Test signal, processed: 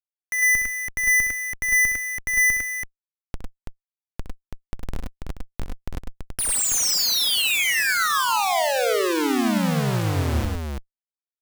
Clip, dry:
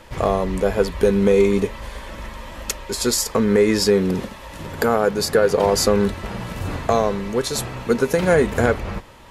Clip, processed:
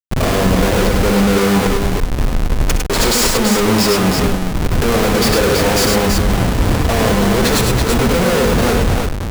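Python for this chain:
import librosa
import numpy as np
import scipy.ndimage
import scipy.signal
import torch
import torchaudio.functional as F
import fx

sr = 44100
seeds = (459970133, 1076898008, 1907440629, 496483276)

y = fx.schmitt(x, sr, flips_db=-26.5)
y = fx.echo_multitap(y, sr, ms=(64, 101, 105, 331), db=(-10.5, -6.5, -6.5, -4.5))
y = F.gain(torch.from_numpy(y), 4.0).numpy()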